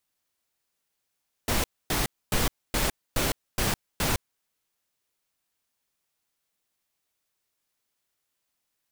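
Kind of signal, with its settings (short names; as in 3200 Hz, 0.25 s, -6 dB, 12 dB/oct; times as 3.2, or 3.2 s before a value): noise bursts pink, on 0.16 s, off 0.26 s, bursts 7, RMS -25 dBFS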